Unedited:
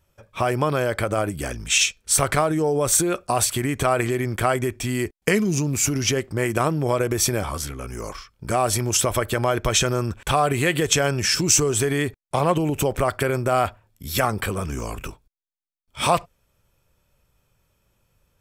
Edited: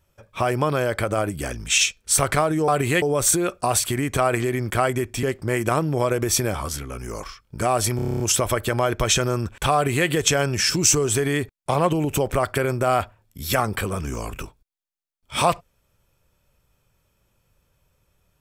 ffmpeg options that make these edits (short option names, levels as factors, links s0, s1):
-filter_complex "[0:a]asplit=12[s0][s1][s2][s3][s4][s5][s6][s7][s8][s9][s10][s11];[s0]atrim=end=2.682[s12];[s1]atrim=start=10.388:end=10.732[s13];[s2]atrim=start=2.678:end=4.892[s14];[s3]atrim=start=6.118:end=8.882[s15];[s4]atrim=start=8.848:end=8.882[s16];[s5]atrim=start=8.848:end=8.882[s17];[s6]atrim=start=8.848:end=8.882[s18];[s7]atrim=start=8.848:end=8.882[s19];[s8]atrim=start=8.848:end=8.882[s20];[s9]atrim=start=8.848:end=8.882[s21];[s10]atrim=start=8.848:end=8.882[s22];[s11]atrim=start=8.848[s23];[s12][s13]acrossfade=d=0.004:c1=hsin:c2=hsin[s24];[s24][s14]acrossfade=d=0.004:c1=hsin:c2=hsin[s25];[s25][s15]acrossfade=d=0.004:c1=hsin:c2=hsin[s26];[s26][s16]acrossfade=d=0.004:c1=hsin:c2=hsin[s27];[s27][s17]acrossfade=d=0.004:c1=hsin:c2=hsin[s28];[s28][s18]acrossfade=d=0.004:c1=hsin:c2=hsin[s29];[s29][s19]acrossfade=d=0.004:c1=hsin:c2=hsin[s30];[s30][s20]acrossfade=d=0.004:c1=hsin:c2=hsin[s31];[s31][s21]acrossfade=d=0.004:c1=hsin:c2=hsin[s32];[s32][s22]acrossfade=d=0.004:c1=hsin:c2=hsin[s33];[s33][s23]acrossfade=d=0.004:c1=hsin:c2=hsin"